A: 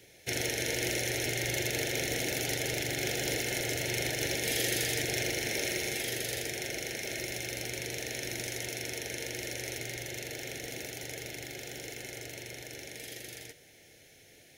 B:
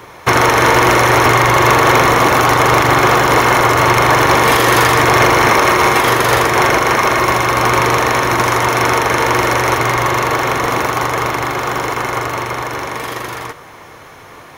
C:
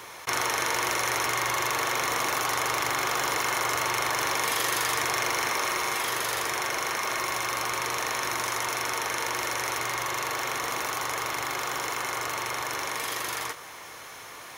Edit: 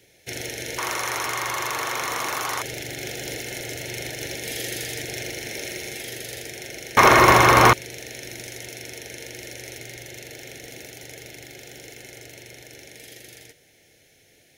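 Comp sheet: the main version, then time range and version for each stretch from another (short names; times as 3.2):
A
0.78–2.62 from C
6.97–7.73 from B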